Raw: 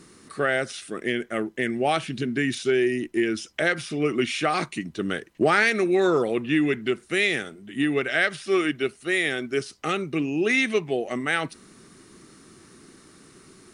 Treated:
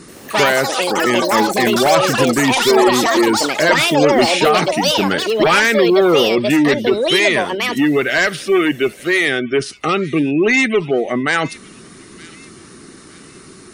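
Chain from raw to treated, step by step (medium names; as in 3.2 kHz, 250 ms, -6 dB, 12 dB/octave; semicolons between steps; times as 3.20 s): Chebyshev shaper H 4 -14 dB, 5 -6 dB, 6 -26 dB, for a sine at -7.5 dBFS; spectral gate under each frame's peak -30 dB strong; on a send: feedback echo behind a high-pass 916 ms, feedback 36%, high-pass 3 kHz, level -15 dB; on the sum: ever faster or slower copies 83 ms, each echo +7 st, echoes 3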